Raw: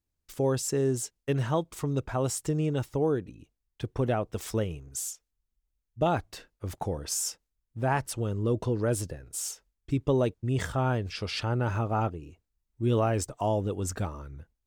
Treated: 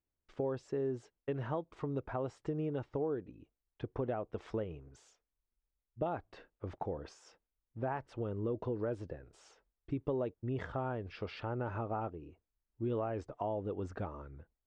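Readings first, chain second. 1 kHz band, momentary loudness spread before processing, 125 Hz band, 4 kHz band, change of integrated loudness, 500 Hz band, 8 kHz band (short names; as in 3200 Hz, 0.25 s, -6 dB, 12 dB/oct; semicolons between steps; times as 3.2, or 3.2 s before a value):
-9.0 dB, 10 LU, -12.0 dB, -18.5 dB, -9.0 dB, -7.5 dB, under -30 dB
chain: tone controls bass -9 dB, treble 0 dB; compressor 2.5:1, threshold -34 dBFS, peak gain reduction 8.5 dB; tape spacing loss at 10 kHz 42 dB; gain +1 dB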